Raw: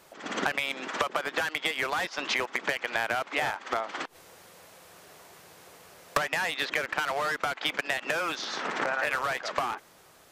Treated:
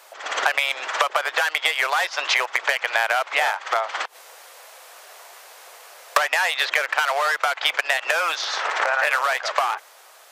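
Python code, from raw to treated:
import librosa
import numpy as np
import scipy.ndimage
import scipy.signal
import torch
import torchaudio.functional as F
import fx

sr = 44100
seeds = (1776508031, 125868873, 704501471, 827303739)

y = scipy.signal.sosfilt(scipy.signal.butter(4, 560.0, 'highpass', fs=sr, output='sos'), x)
y = y * 10.0 ** (8.5 / 20.0)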